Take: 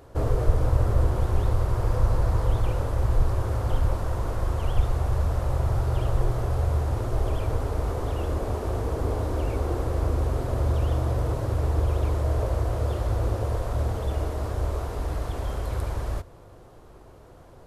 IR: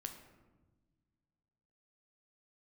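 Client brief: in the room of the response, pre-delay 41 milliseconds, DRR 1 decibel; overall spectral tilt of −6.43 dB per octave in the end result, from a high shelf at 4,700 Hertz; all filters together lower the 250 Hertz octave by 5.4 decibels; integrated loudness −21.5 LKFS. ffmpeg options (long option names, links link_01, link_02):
-filter_complex "[0:a]equalizer=frequency=250:width_type=o:gain=-9,highshelf=frequency=4700:gain=7.5,asplit=2[link_01][link_02];[1:a]atrim=start_sample=2205,adelay=41[link_03];[link_02][link_03]afir=irnorm=-1:irlink=0,volume=2dB[link_04];[link_01][link_04]amix=inputs=2:normalize=0,volume=2dB"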